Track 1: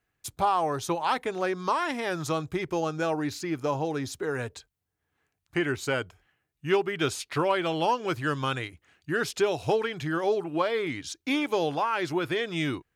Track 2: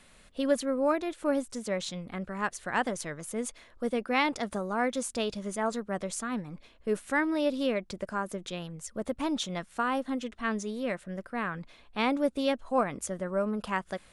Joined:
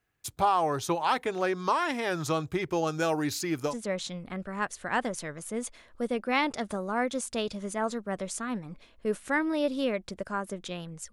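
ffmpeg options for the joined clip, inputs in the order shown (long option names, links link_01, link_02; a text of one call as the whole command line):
ffmpeg -i cue0.wav -i cue1.wav -filter_complex "[0:a]asettb=1/sr,asplit=3[link_01][link_02][link_03];[link_01]atrim=end=2.874[link_04];[link_02]atrim=start=2.87:end=3.75,asetpts=PTS-STARTPTS,afade=type=in:duration=0.004:curve=qsin,afade=type=out:start_time=0.876:duration=0.004:curve=qsin,highshelf=frequency=5700:gain=10[link_05];[link_03]atrim=start=3.746[link_06];[link_04][link_05]acrossfade=duration=0.004:curve1=hsin:curve2=qsin[link_07];[link_07][link_06]acrossfade=duration=0.004:curve1=qsin:curve2=hsin,apad=whole_dur=11.12,atrim=end=11.12,atrim=end=3.75,asetpts=PTS-STARTPTS[link_08];[1:a]atrim=start=1.47:end=8.94,asetpts=PTS-STARTPTS[link_09];[link_08][link_09]acrossfade=duration=0.1:curve1=tri:curve2=tri" out.wav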